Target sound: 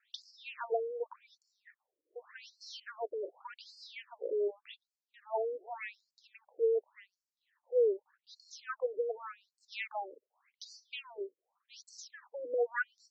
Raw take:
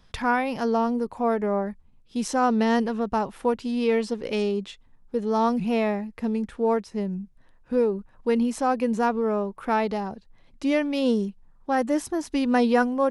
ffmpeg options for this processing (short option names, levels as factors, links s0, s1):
-filter_complex "[0:a]asettb=1/sr,asplit=3[s0][s1][s2];[s0]atrim=end=9.724[s3];[s1]atrim=start=9.72:end=10.65,asetpts=PTS-STARTPTS,afade=t=in:d=0.004:c=qsin,afade=t=out:st=0.926:d=0.004:c=qsin,tiltshelf=f=840:g=-6[s4];[s2]atrim=start=10.646[s5];[s3][s4]acrossfade=d=0.004:c1=hsin:c2=qsin[s6];[s6][s5]acrossfade=d=0.004:c1=qsin:c2=hsin,afftfilt=real='re*between(b*sr/1024,410*pow(6000/410,0.5+0.5*sin(2*PI*0.86*pts/sr))/1.41,410*pow(6000/410,0.5+0.5*sin(2*PI*0.86*pts/sr))*1.41)':imag='im*between(b*sr/1024,410*pow(6000/410,0.5+0.5*sin(2*PI*0.86*pts/sr))/1.41,410*pow(6000/410,0.5+0.5*sin(2*PI*0.86*pts/sr))*1.41)':win_size=1024:overlap=0.75,volume=0.596"